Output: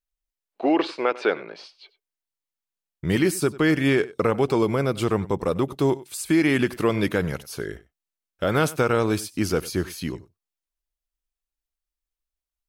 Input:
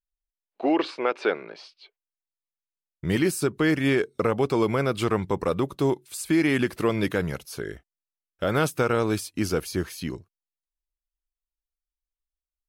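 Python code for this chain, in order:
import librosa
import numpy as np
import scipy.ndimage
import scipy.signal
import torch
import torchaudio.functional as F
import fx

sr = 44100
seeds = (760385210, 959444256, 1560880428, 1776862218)

p1 = fx.peak_eq(x, sr, hz=1900.0, db=-4.0, octaves=2.3, at=(4.58, 5.6))
p2 = p1 + fx.echo_single(p1, sr, ms=96, db=-19.5, dry=0)
y = p2 * 10.0 ** (2.0 / 20.0)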